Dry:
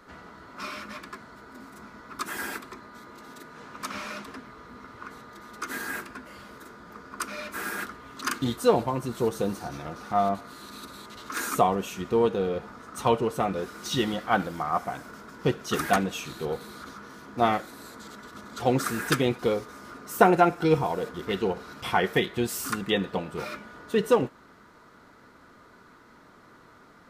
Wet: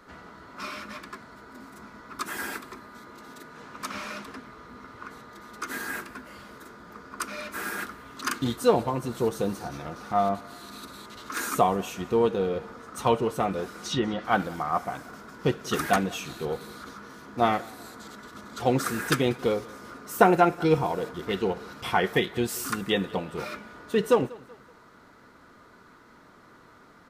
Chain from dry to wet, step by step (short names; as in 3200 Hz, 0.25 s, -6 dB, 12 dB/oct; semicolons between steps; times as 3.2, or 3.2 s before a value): 13.75–14.25 treble ducked by the level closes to 1800 Hz, closed at -21.5 dBFS; on a send: feedback echo 0.189 s, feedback 42%, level -22.5 dB